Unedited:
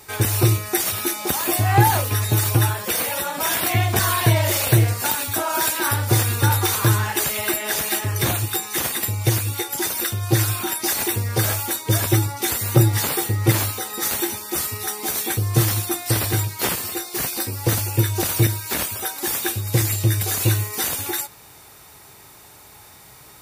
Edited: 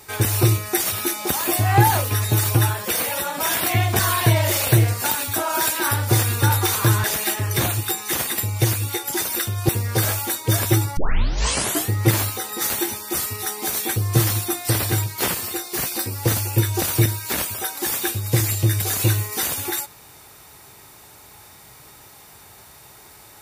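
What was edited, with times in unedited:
0:07.04–0:07.69: remove
0:10.34–0:11.10: remove
0:12.38: tape start 0.93 s

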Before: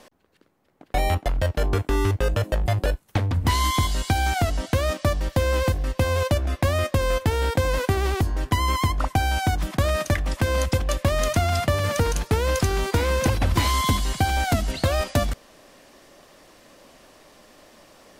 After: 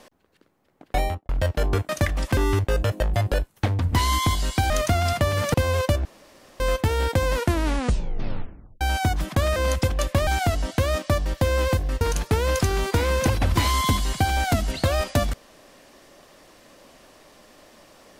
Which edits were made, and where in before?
0:00.96–0:01.29: fade out and dull
0:04.22–0:05.96: swap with 0:11.17–0:12.01
0:06.47–0:07.02: fill with room tone
0:07.76: tape stop 1.47 s
0:09.98–0:10.46: move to 0:01.89

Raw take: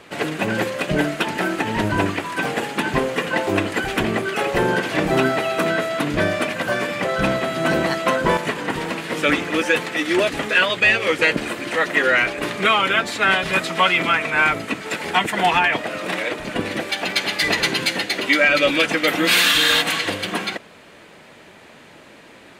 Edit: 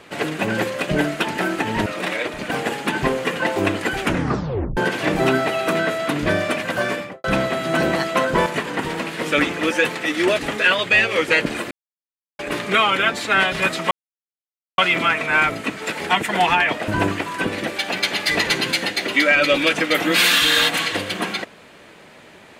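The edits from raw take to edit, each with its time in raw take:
0:01.86–0:02.42: swap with 0:15.92–0:16.57
0:03.93: tape stop 0.75 s
0:06.82–0:07.15: fade out and dull
0:11.62–0:12.30: silence
0:13.82: splice in silence 0.87 s

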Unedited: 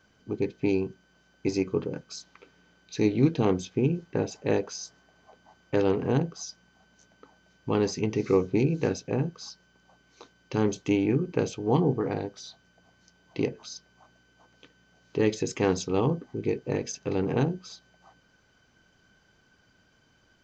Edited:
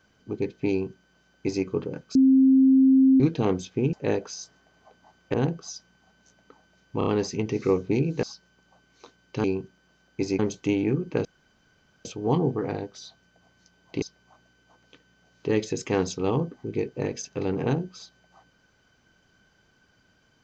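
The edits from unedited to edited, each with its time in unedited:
0:00.70–0:01.65: duplicate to 0:10.61
0:02.15–0:03.20: beep over 265 Hz −13.5 dBFS
0:03.93–0:04.35: remove
0:05.76–0:06.07: remove
0:07.71: stutter 0.03 s, 4 plays
0:08.87–0:09.40: remove
0:11.47: splice in room tone 0.80 s
0:13.44–0:13.72: remove

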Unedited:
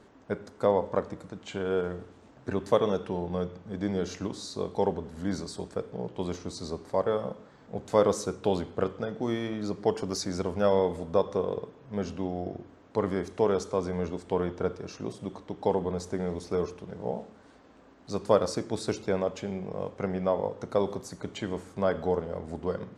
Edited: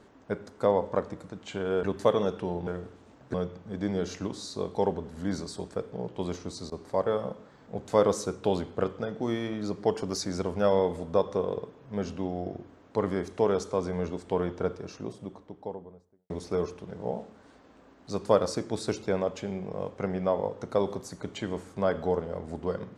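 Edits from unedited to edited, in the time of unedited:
0:01.83–0:02.50: move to 0:03.34
0:06.29–0:07.13: duck −18 dB, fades 0.41 s logarithmic
0:14.62–0:16.30: fade out and dull

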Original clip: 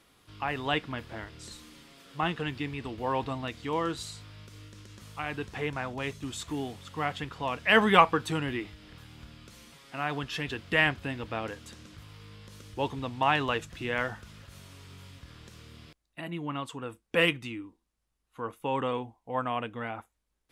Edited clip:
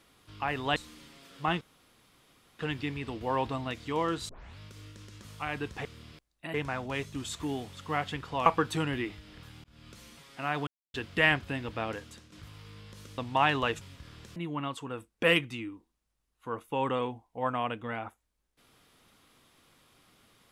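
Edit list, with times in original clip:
0:00.76–0:01.51: remove
0:02.36: splice in room tone 0.98 s
0:04.06: tape start 0.29 s
0:07.54–0:08.01: remove
0:09.19–0:09.44: fade in
0:10.22–0:10.49: silence
0:11.44–0:11.87: fade out equal-power, to −11 dB
0:12.73–0:13.04: remove
0:13.67–0:15.04: remove
0:15.59–0:16.28: move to 0:05.62

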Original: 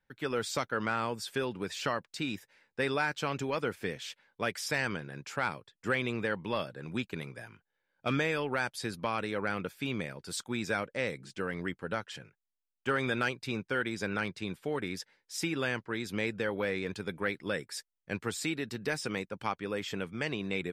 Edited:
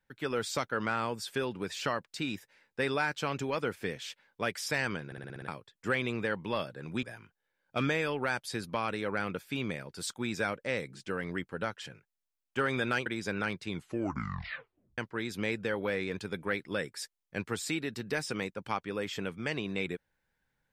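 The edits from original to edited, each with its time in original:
0:05.06: stutter in place 0.06 s, 7 plays
0:07.03–0:07.33: remove
0:13.36–0:13.81: remove
0:14.43: tape stop 1.30 s

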